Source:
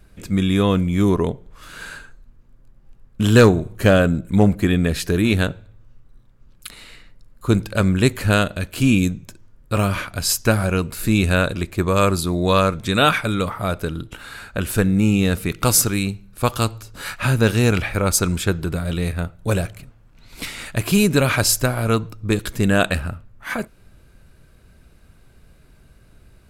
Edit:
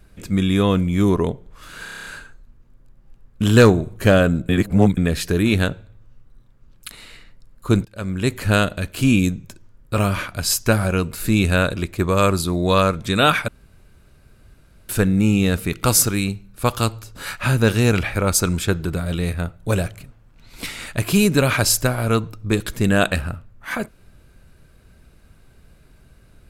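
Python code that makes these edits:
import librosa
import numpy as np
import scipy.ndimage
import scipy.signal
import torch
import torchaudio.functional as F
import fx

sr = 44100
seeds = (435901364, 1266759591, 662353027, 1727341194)

y = fx.edit(x, sr, fx.stutter(start_s=1.84, slice_s=0.03, count=8),
    fx.reverse_span(start_s=4.28, length_s=0.48),
    fx.fade_in_from(start_s=7.64, length_s=0.69, floor_db=-23.5),
    fx.room_tone_fill(start_s=13.27, length_s=1.41), tone=tone)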